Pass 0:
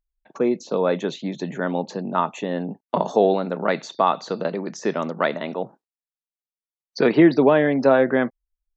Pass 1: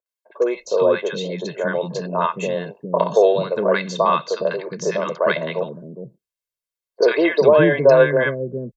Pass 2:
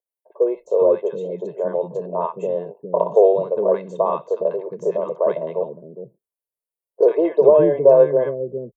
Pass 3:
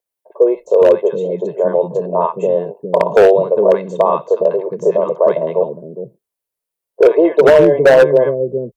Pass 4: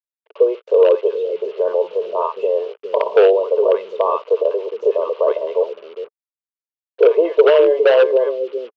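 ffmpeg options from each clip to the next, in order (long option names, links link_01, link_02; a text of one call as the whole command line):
ffmpeg -i in.wav -filter_complex "[0:a]aecho=1:1:1.9:0.75,acrossover=split=330|1000[link_01][link_02][link_03];[link_03]adelay=60[link_04];[link_01]adelay=410[link_05];[link_05][link_02][link_04]amix=inputs=3:normalize=0,volume=3dB" out.wav
ffmpeg -i in.wav -af "firequalizer=gain_entry='entry(260,0);entry(410,9);entry(980,4);entry(1400,-13);entry(3200,-13);entry(4700,-24);entry(9100,6)':delay=0.05:min_phase=1,volume=-7dB" out.wav
ffmpeg -i in.wav -filter_complex "[0:a]asplit=2[link_01][link_02];[link_02]alimiter=limit=-12dB:level=0:latency=1:release=82,volume=-2dB[link_03];[link_01][link_03]amix=inputs=2:normalize=0,aeval=exprs='0.596*(abs(mod(val(0)/0.596+3,4)-2)-1)':channel_layout=same,volume=3dB" out.wav
ffmpeg -i in.wav -af "acrusher=bits=5:mix=0:aa=0.5,highpass=frequency=420:width=0.5412,highpass=frequency=420:width=1.3066,equalizer=frequency=440:width_type=q:width=4:gain=7,equalizer=frequency=730:width_type=q:width=4:gain=-4,equalizer=frequency=1200:width_type=q:width=4:gain=5,equalizer=frequency=1800:width_type=q:width=4:gain=-5,equalizer=frequency=2900:width_type=q:width=4:gain=9,lowpass=frequency=4300:width=0.5412,lowpass=frequency=4300:width=1.3066,volume=-5dB" out.wav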